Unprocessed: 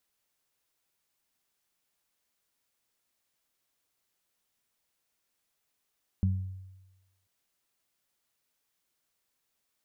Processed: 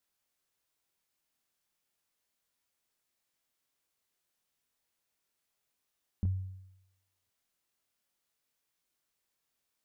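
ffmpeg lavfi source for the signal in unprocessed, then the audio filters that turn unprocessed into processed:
-f lavfi -i "aevalsrc='0.0794*pow(10,-3*t/1.09)*sin(2*PI*94.4*t)+0.0501*pow(10,-3*t/0.46)*sin(2*PI*188.8*t)':d=1.04:s=44100"
-af "flanger=delay=22.5:depth=3.4:speed=0.35"

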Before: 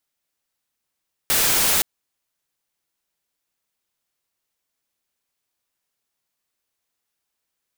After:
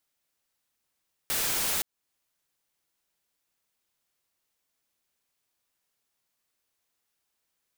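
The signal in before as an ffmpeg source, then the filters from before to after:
-f lavfi -i "anoisesrc=c=white:a=0.206:d=0.52:r=44100:seed=1"
-af "alimiter=limit=0.0668:level=0:latency=1:release=297"

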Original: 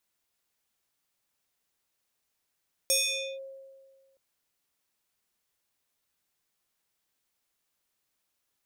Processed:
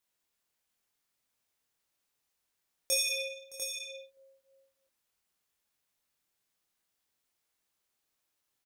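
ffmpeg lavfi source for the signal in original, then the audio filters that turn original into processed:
-f lavfi -i "aevalsrc='0.0944*pow(10,-3*t/1.68)*sin(2*PI*539*t+3.5*clip(1-t/0.49,0,1)*sin(2*PI*5.59*539*t))':d=1.27:s=44100"
-filter_complex "[0:a]flanger=delay=22.5:depth=2.9:speed=0.7,asplit=2[s0][s1];[s1]aecho=0:1:68|171|616|697:0.316|0.2|0.106|0.422[s2];[s0][s2]amix=inputs=2:normalize=0"

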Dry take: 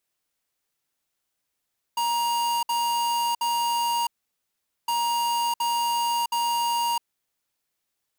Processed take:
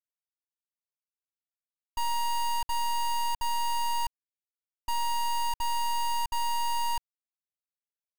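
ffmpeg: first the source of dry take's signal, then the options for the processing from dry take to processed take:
-f lavfi -i "aevalsrc='0.0596*(2*lt(mod(943*t,1),0.5)-1)*clip(min(mod(mod(t,2.91),0.72),0.66-mod(mod(t,2.91),0.72))/0.005,0,1)*lt(mod(t,2.91),2.16)':d=5.82:s=44100"
-af "bandreject=f=60:t=h:w=6,bandreject=f=120:t=h:w=6,bandreject=f=180:t=h:w=6,bandreject=f=240:t=h:w=6,bandreject=f=300:t=h:w=6,bandreject=f=360:t=h:w=6,acrusher=bits=4:dc=4:mix=0:aa=0.000001"

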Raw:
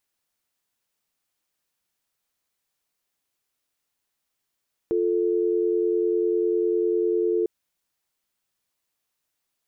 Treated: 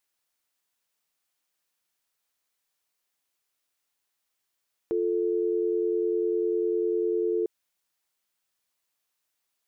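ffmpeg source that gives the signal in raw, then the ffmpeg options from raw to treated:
-f lavfi -i "aevalsrc='0.075*(sin(2*PI*350*t)+sin(2*PI*440*t))':d=2.55:s=44100"
-af "lowshelf=f=360:g=-7.5"

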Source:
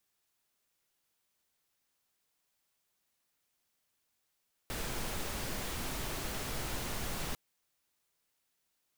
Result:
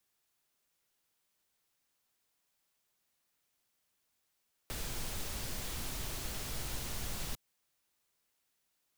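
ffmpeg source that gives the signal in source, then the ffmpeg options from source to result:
-f lavfi -i "anoisesrc=c=pink:a=0.0684:d=2.65:r=44100:seed=1"
-filter_complex "[0:a]acrossover=split=140|3000[s0][s1][s2];[s1]acompressor=threshold=0.00501:ratio=6[s3];[s0][s3][s2]amix=inputs=3:normalize=0"

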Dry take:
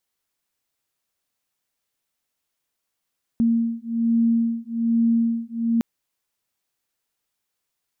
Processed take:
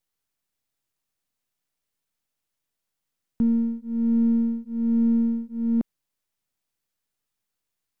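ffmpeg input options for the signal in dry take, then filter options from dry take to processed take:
-f lavfi -i "aevalsrc='0.0891*(sin(2*PI*230*t)+sin(2*PI*231.2*t))':d=2.41:s=44100"
-filter_complex "[0:a]acrossover=split=290[s0][s1];[s1]aeval=exprs='max(val(0),0)':c=same[s2];[s0][s2]amix=inputs=2:normalize=0"

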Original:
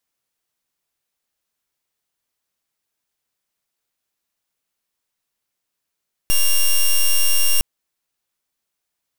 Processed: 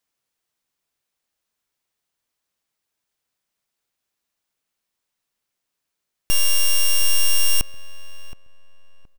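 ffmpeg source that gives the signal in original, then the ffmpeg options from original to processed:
-f lavfi -i "aevalsrc='0.2*(2*lt(mod(2790*t,1),0.07)-1)':d=1.31:s=44100"
-filter_complex "[0:a]equalizer=f=14000:w=0.67:g=-3.5,asplit=2[s0][s1];[s1]adelay=721,lowpass=f=1600:p=1,volume=0.2,asplit=2[s2][s3];[s3]adelay=721,lowpass=f=1600:p=1,volume=0.29,asplit=2[s4][s5];[s5]adelay=721,lowpass=f=1600:p=1,volume=0.29[s6];[s0][s2][s4][s6]amix=inputs=4:normalize=0"

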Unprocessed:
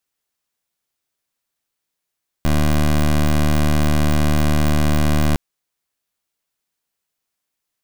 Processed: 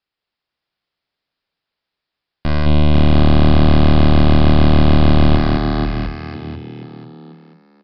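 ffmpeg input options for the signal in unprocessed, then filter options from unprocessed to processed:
-f lavfi -i "aevalsrc='0.178*(2*lt(mod(75.3*t,1),0.17)-1)':d=2.91:s=44100"
-filter_complex "[0:a]asplit=2[s0][s1];[s1]asplit=5[s2][s3][s4][s5][s6];[s2]adelay=490,afreqshift=41,volume=0.668[s7];[s3]adelay=980,afreqshift=82,volume=0.26[s8];[s4]adelay=1470,afreqshift=123,volume=0.101[s9];[s5]adelay=1960,afreqshift=164,volume=0.0398[s10];[s6]adelay=2450,afreqshift=205,volume=0.0155[s11];[s7][s8][s9][s10][s11]amix=inputs=5:normalize=0[s12];[s0][s12]amix=inputs=2:normalize=0,aresample=11025,aresample=44100,asplit=2[s13][s14];[s14]aecho=0:1:37.9|212.8:0.316|0.794[s15];[s13][s15]amix=inputs=2:normalize=0"

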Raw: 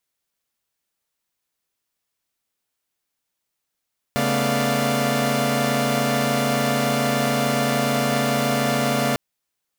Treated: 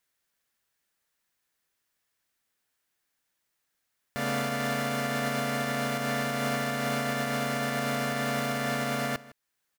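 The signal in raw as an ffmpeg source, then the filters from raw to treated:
-f lavfi -i "aevalsrc='0.0708*((2*mod(138.59*t,1)-1)+(2*mod(220*t,1)-1)+(2*mod(246.94*t,1)-1)+(2*mod(587.33*t,1)-1)+(2*mod(698.46*t,1)-1))':d=5:s=44100"
-filter_complex "[0:a]equalizer=f=1700:w=2.5:g=6.5,alimiter=limit=0.0944:level=0:latency=1:release=474,asplit=2[s0][s1];[s1]adelay=157.4,volume=0.112,highshelf=f=4000:g=-3.54[s2];[s0][s2]amix=inputs=2:normalize=0"

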